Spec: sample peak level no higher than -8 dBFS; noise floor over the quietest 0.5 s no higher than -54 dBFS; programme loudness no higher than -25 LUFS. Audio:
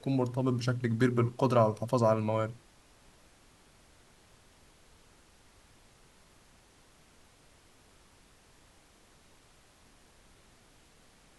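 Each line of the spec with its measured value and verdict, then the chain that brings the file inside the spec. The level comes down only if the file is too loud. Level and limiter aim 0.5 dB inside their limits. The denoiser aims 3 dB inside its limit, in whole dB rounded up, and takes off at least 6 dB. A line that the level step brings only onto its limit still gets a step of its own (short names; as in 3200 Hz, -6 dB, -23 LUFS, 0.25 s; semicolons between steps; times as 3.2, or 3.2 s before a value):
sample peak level -12.0 dBFS: OK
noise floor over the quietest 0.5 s -61 dBFS: OK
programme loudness -29.0 LUFS: OK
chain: none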